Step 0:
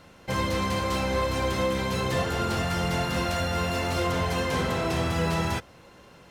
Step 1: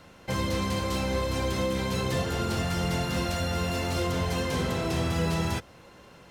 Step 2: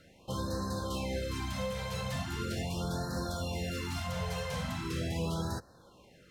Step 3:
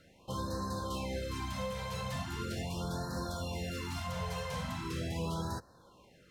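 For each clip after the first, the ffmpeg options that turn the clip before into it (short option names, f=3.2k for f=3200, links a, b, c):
-filter_complex "[0:a]acrossover=split=490|3000[a][b][c];[b]acompressor=threshold=-35dB:ratio=3[d];[a][d][c]amix=inputs=3:normalize=0"
-af "afftfilt=real='re*(1-between(b*sr/1024,280*pow(2700/280,0.5+0.5*sin(2*PI*0.4*pts/sr))/1.41,280*pow(2700/280,0.5+0.5*sin(2*PI*0.4*pts/sr))*1.41))':imag='im*(1-between(b*sr/1024,280*pow(2700/280,0.5+0.5*sin(2*PI*0.4*pts/sr))/1.41,280*pow(2700/280,0.5+0.5*sin(2*PI*0.4*pts/sr))*1.41))':win_size=1024:overlap=0.75,volume=-6.5dB"
-af "equalizer=f=1k:t=o:w=0.21:g=5.5,volume=-2.5dB"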